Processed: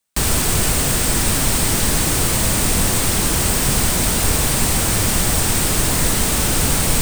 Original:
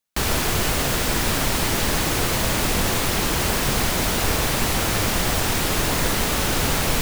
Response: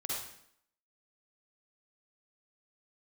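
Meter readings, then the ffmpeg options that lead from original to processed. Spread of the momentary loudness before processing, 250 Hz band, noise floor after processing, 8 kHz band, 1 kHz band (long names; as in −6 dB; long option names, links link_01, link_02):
0 LU, +3.5 dB, −19 dBFS, +8.0 dB, 0.0 dB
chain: -filter_complex "[0:a]equalizer=frequency=8500:width_type=o:width=0.24:gain=9,acrossover=split=280|4900[link_01][link_02][link_03];[link_02]asoftclip=type=tanh:threshold=-27.5dB[link_04];[link_01][link_04][link_03]amix=inputs=3:normalize=0,volume=5dB"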